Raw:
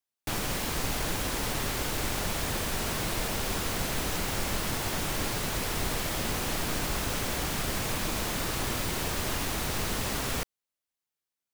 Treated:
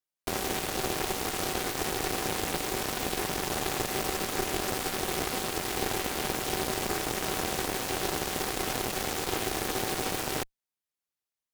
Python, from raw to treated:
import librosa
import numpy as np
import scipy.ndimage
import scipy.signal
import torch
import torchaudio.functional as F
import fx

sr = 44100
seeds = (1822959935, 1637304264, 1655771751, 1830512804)

y = x * np.sin(2.0 * np.pi * 380.0 * np.arange(len(x)) / sr)
y = fx.cheby_harmonics(y, sr, harmonics=(4,), levels_db=(-7,), full_scale_db=-17.0)